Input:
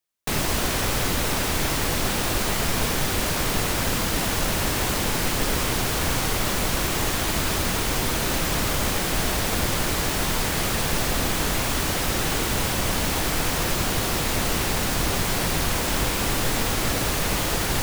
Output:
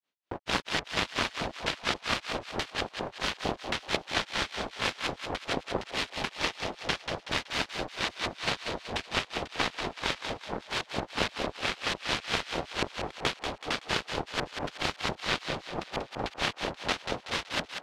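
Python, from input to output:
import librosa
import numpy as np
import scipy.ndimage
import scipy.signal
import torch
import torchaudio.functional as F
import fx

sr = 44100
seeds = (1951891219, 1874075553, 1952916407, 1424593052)

p1 = scipy.signal.sosfilt(scipy.signal.butter(2, 260.0, 'highpass', fs=sr, output='sos'), x)
p2 = fx.low_shelf(p1, sr, hz=490.0, db=8.5)
p3 = fx.cheby_harmonics(p2, sr, harmonics=(7,), levels_db=(-9,), full_scale_db=-10.0)
p4 = fx.filter_lfo_lowpass(p3, sr, shape='square', hz=1.9, low_hz=720.0, high_hz=3600.0, q=1.2)
p5 = fx.granulator(p4, sr, seeds[0], grain_ms=170.0, per_s=4.4, spray_ms=100.0, spread_st=0)
y = p5 + fx.echo_thinned(p5, sr, ms=188, feedback_pct=46, hz=910.0, wet_db=-6.0, dry=0)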